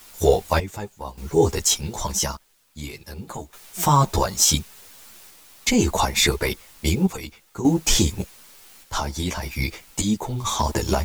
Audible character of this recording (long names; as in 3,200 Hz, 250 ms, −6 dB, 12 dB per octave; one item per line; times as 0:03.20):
a quantiser's noise floor 8 bits, dither triangular
sample-and-hold tremolo 1.7 Hz, depth 85%
a shimmering, thickened sound